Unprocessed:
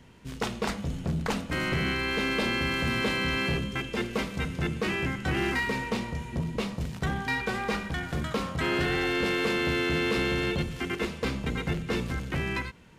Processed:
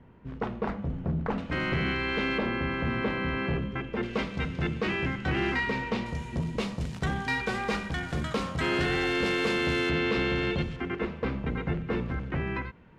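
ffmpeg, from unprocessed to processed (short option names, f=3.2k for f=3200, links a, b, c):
-af "asetnsamples=n=441:p=0,asendcmd='1.38 lowpass f 3300;2.38 lowpass f 1800;4.03 lowpass f 4100;6.06 lowpass f 9400;9.9 lowpass f 4000;10.76 lowpass f 1900',lowpass=1.4k"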